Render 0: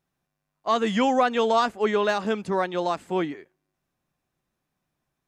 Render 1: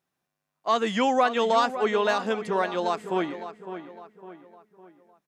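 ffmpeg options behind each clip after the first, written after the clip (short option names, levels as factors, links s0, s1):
-filter_complex "[0:a]highpass=f=260:p=1,asplit=2[s0][s1];[s1]adelay=557,lowpass=f=2700:p=1,volume=0.282,asplit=2[s2][s3];[s3]adelay=557,lowpass=f=2700:p=1,volume=0.44,asplit=2[s4][s5];[s5]adelay=557,lowpass=f=2700:p=1,volume=0.44,asplit=2[s6][s7];[s7]adelay=557,lowpass=f=2700:p=1,volume=0.44,asplit=2[s8][s9];[s9]adelay=557,lowpass=f=2700:p=1,volume=0.44[s10];[s2][s4][s6][s8][s10]amix=inputs=5:normalize=0[s11];[s0][s11]amix=inputs=2:normalize=0"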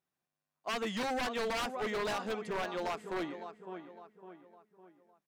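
-af "aeval=exprs='0.0891*(abs(mod(val(0)/0.0891+3,4)-2)-1)':c=same,volume=0.398"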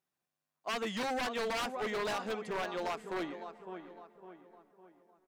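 -filter_complex "[0:a]lowshelf=f=150:g=-4,asplit=2[s0][s1];[s1]adelay=690,lowpass=f=1900:p=1,volume=0.0708,asplit=2[s2][s3];[s3]adelay=690,lowpass=f=1900:p=1,volume=0.45,asplit=2[s4][s5];[s5]adelay=690,lowpass=f=1900:p=1,volume=0.45[s6];[s0][s2][s4][s6]amix=inputs=4:normalize=0"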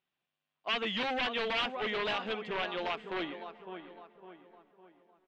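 -af "lowpass=f=3100:t=q:w=2.9"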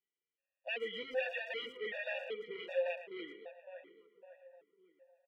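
-filter_complex "[0:a]asplit=3[s0][s1][s2];[s0]bandpass=f=530:t=q:w=8,volume=1[s3];[s1]bandpass=f=1840:t=q:w=8,volume=0.501[s4];[s2]bandpass=f=2480:t=q:w=8,volume=0.355[s5];[s3][s4][s5]amix=inputs=3:normalize=0,asplit=2[s6][s7];[s7]adelay=110,highpass=300,lowpass=3400,asoftclip=type=hard:threshold=0.0112,volume=0.282[s8];[s6][s8]amix=inputs=2:normalize=0,afftfilt=real='re*gt(sin(2*PI*1.3*pts/sr)*(1-2*mod(floor(b*sr/1024/480),2)),0)':imag='im*gt(sin(2*PI*1.3*pts/sr)*(1-2*mod(floor(b*sr/1024/480),2)),0)':win_size=1024:overlap=0.75,volume=2.24"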